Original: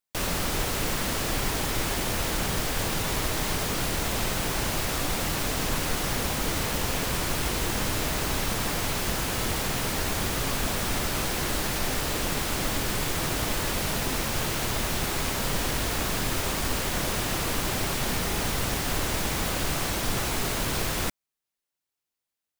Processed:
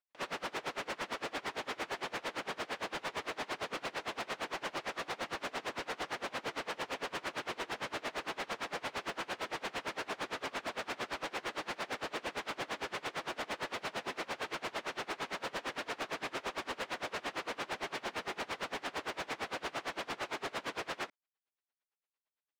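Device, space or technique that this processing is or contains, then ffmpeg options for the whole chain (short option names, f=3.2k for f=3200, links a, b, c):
helicopter radio: -af "highpass=400,lowpass=2.8k,aeval=exprs='val(0)*pow(10,-29*(0.5-0.5*cos(2*PI*8.8*n/s))/20)':c=same,asoftclip=type=hard:threshold=-36dB,volume=2.5dB"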